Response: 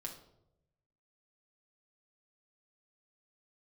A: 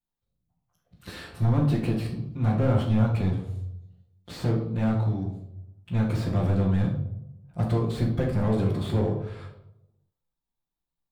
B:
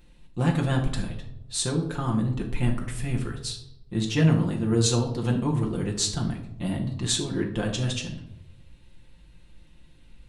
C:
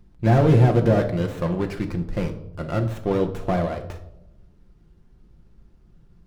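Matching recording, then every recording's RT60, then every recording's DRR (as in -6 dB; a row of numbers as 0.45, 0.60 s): B; 0.85, 0.85, 0.85 s; -9.5, 0.0, 4.0 dB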